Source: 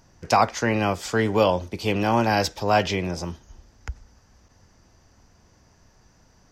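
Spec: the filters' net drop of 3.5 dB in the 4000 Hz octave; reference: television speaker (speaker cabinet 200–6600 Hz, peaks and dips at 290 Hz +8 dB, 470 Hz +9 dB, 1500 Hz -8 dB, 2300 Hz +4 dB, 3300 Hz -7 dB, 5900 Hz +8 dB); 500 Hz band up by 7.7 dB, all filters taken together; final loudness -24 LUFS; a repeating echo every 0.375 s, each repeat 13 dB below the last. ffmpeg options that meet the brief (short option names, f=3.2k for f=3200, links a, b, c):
-af "highpass=f=200:w=0.5412,highpass=f=200:w=1.3066,equalizer=f=290:t=q:w=4:g=8,equalizer=f=470:t=q:w=4:g=9,equalizer=f=1.5k:t=q:w=4:g=-8,equalizer=f=2.3k:t=q:w=4:g=4,equalizer=f=3.3k:t=q:w=4:g=-7,equalizer=f=5.9k:t=q:w=4:g=8,lowpass=f=6.6k:w=0.5412,lowpass=f=6.6k:w=1.3066,equalizer=f=500:t=o:g=3,equalizer=f=4k:t=o:g=-5.5,aecho=1:1:375|750|1125:0.224|0.0493|0.0108,volume=-5.5dB"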